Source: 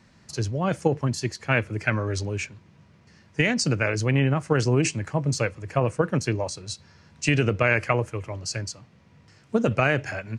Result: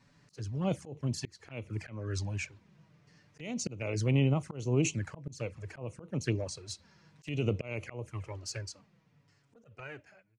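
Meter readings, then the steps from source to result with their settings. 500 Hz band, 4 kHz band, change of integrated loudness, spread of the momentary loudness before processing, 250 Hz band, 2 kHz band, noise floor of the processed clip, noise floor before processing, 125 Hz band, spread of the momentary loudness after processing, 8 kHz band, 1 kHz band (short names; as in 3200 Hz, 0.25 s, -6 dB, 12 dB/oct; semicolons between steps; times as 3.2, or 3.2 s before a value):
-12.0 dB, -11.0 dB, -10.0 dB, 10 LU, -9.0 dB, -17.5 dB, -69 dBFS, -56 dBFS, -8.5 dB, 16 LU, -8.5 dB, -17.5 dB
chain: ending faded out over 2.21 s; envelope flanger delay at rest 7.4 ms, full sweep at -20 dBFS; auto swell 0.303 s; gain -4.5 dB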